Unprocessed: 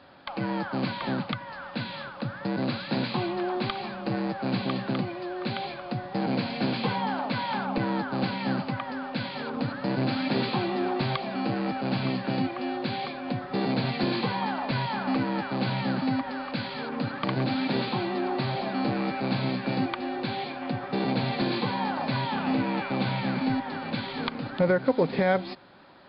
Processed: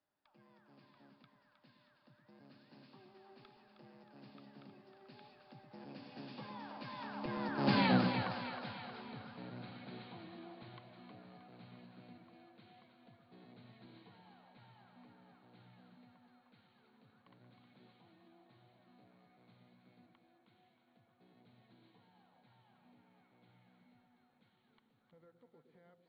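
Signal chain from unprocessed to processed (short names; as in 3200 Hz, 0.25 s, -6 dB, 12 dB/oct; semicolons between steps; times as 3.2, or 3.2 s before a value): Doppler pass-by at 7.83, 23 m/s, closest 2.2 m; split-band echo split 540 Hz, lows 0.115 s, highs 0.314 s, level -7 dB; gain +2 dB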